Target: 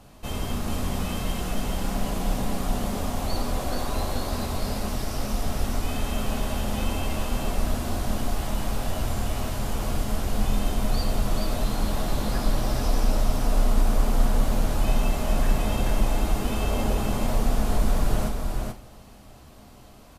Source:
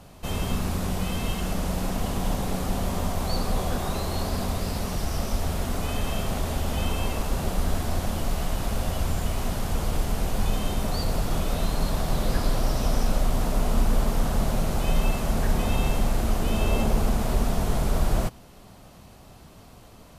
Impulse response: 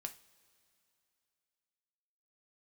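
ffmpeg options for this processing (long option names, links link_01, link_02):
-filter_complex "[0:a]aecho=1:1:432:0.631[link_01];[1:a]atrim=start_sample=2205[link_02];[link_01][link_02]afir=irnorm=-1:irlink=0,volume=1.5dB"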